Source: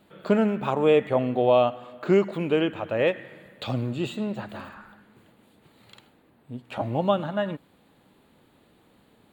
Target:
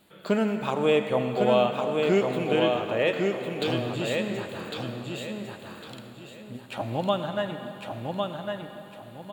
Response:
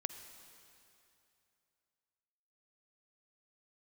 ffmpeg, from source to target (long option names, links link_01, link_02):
-filter_complex "[0:a]highshelf=frequency=3000:gain=11,aecho=1:1:1104|2208|3312|4416:0.631|0.189|0.0568|0.017[link_01];[1:a]atrim=start_sample=2205,asetrate=32193,aresample=44100[link_02];[link_01][link_02]afir=irnorm=-1:irlink=0,volume=-4dB"